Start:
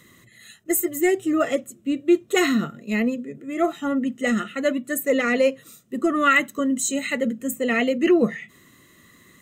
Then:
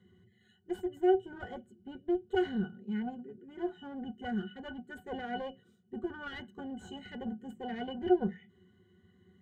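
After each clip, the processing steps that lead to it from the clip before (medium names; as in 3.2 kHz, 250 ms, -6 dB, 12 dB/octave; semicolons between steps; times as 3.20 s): one-sided clip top -27.5 dBFS; pitch-class resonator F#, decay 0.1 s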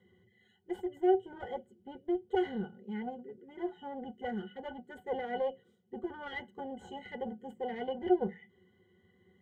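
small resonant body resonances 520/830/2000/3200 Hz, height 14 dB, ringing for 25 ms; trim -5.5 dB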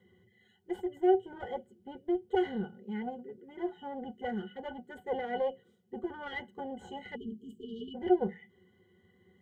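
spectral selection erased 7.16–7.95 s, 470–2800 Hz; trim +1.5 dB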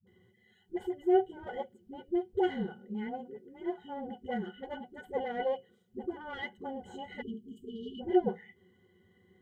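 phase dispersion highs, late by 69 ms, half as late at 320 Hz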